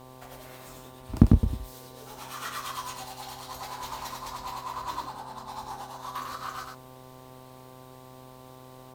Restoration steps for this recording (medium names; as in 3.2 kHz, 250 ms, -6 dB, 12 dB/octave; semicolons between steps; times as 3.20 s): de-hum 128.8 Hz, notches 9; inverse comb 98 ms -4 dB